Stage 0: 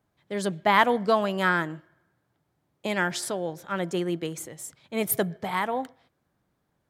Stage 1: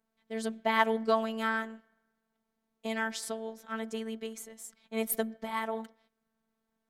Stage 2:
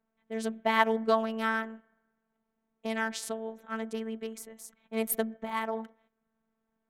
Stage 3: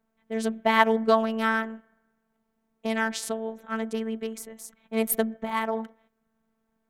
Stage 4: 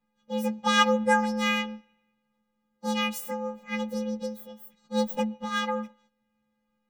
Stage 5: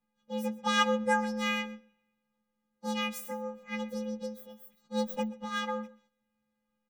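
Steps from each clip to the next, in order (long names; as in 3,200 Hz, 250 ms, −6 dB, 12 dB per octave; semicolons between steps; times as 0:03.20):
phases set to zero 223 Hz; level −4.5 dB
adaptive Wiener filter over 9 samples; level +1.5 dB
low-shelf EQ 200 Hz +3 dB; level +4.5 dB
partials spread apart or drawn together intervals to 125%
single-tap delay 128 ms −20 dB; level −5 dB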